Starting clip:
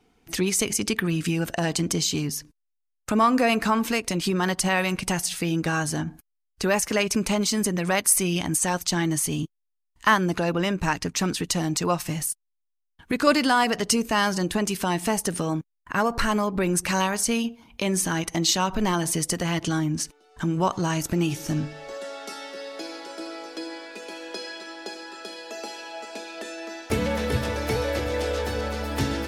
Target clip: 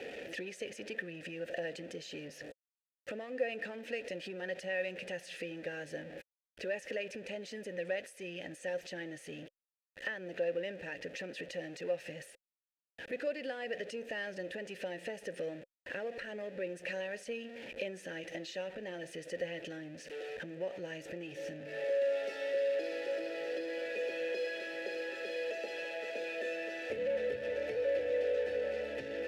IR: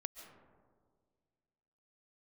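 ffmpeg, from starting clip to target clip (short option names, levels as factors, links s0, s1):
-filter_complex "[0:a]aeval=exprs='val(0)+0.5*0.0473*sgn(val(0))':c=same,lowshelf=f=190:g=4,acompressor=threshold=0.0631:ratio=6,asplit=3[s0][s1][s2];[s0]bandpass=f=530:t=q:w=8,volume=1[s3];[s1]bandpass=f=1840:t=q:w=8,volume=0.501[s4];[s2]bandpass=f=2480:t=q:w=8,volume=0.355[s5];[s3][s4][s5]amix=inputs=3:normalize=0,volume=1.12"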